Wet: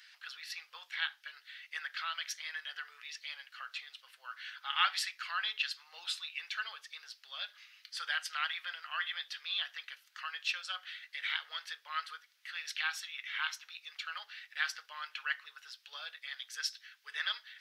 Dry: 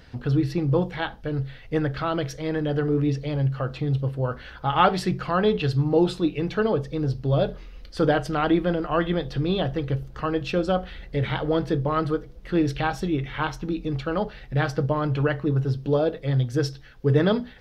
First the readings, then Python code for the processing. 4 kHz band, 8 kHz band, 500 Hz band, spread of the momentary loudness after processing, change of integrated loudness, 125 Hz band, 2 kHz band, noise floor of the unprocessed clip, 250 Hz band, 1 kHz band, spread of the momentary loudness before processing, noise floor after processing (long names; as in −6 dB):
0.0 dB, can't be measured, below −40 dB, 12 LU, −13.5 dB, below −40 dB, −3.0 dB, −44 dBFS, below −40 dB, −14.5 dB, 7 LU, −68 dBFS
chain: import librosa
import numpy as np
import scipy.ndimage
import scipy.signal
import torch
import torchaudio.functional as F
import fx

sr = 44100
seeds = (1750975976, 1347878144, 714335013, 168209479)

y = scipy.signal.sosfilt(scipy.signal.cheby2(4, 80, 280.0, 'highpass', fs=sr, output='sos'), x)